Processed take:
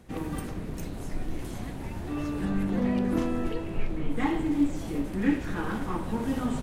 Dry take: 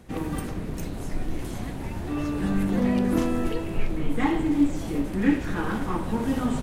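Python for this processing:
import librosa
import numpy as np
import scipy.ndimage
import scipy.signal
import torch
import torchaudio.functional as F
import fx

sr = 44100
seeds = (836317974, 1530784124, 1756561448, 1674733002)

y = fx.high_shelf(x, sr, hz=6200.0, db=-7.5, at=(2.45, 4.17))
y = F.gain(torch.from_numpy(y), -3.5).numpy()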